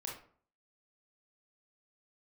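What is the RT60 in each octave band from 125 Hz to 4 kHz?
0.55, 0.55, 0.50, 0.50, 0.40, 0.30 s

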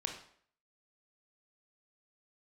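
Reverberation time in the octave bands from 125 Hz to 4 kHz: 0.50, 0.55, 0.60, 0.55, 0.55, 0.50 s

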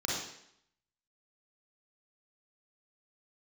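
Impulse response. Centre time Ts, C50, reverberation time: 66 ms, -1.5 dB, 0.70 s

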